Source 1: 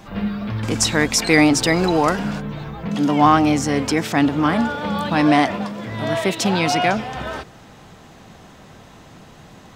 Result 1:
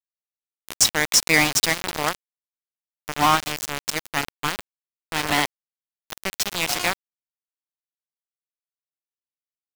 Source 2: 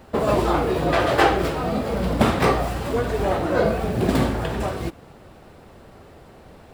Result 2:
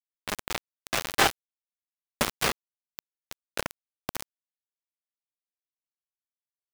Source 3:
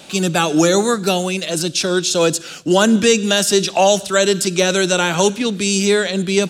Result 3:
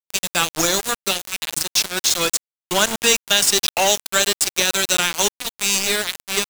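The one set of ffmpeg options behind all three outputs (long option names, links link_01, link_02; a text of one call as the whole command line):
ffmpeg -i in.wav -af "tiltshelf=frequency=970:gain=-6,aeval=exprs='val(0)*gte(abs(val(0)),0.224)':channel_layout=same,volume=-3dB" out.wav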